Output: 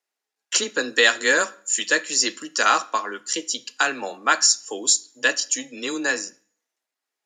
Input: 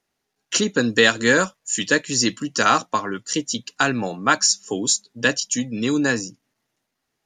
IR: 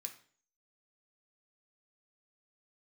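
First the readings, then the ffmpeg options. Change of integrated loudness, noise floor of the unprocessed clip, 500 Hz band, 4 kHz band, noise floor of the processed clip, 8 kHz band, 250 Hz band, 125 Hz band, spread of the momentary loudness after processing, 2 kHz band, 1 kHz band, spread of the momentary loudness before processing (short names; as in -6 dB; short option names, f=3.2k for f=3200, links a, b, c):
-1.0 dB, -78 dBFS, -4.0 dB, 0.0 dB, under -85 dBFS, +1.0 dB, -10.5 dB, under -20 dB, 10 LU, 0.0 dB, -1.5 dB, 9 LU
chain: -filter_complex "[0:a]highpass=430,agate=range=-7dB:threshold=-51dB:ratio=16:detection=peak,afreqshift=15,asplit=2[a][b];[1:a]atrim=start_sample=2205[c];[b][c]afir=irnorm=-1:irlink=0,volume=-1.5dB[d];[a][d]amix=inputs=2:normalize=0,volume=-3dB"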